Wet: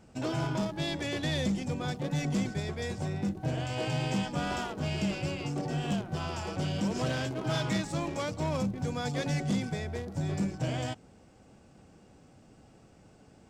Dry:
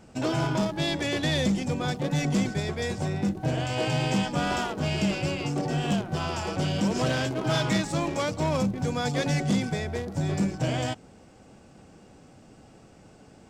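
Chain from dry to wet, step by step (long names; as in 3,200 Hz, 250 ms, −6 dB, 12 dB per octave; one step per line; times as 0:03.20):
parametric band 68 Hz +3 dB 2.4 octaves
level −6 dB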